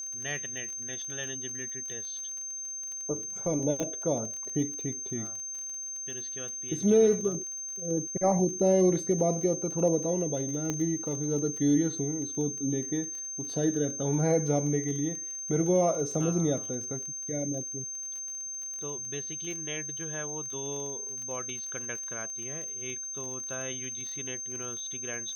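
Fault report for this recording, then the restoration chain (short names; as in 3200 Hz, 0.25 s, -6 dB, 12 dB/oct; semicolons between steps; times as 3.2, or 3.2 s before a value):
crackle 31/s -37 dBFS
tone 6300 Hz -35 dBFS
3.8 pop -18 dBFS
10.7 pop -17 dBFS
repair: de-click; notch 6300 Hz, Q 30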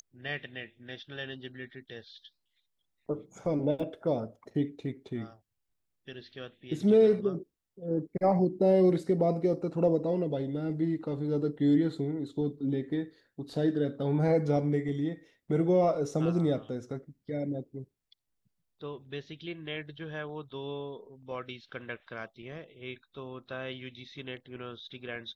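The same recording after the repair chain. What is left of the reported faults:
3.8 pop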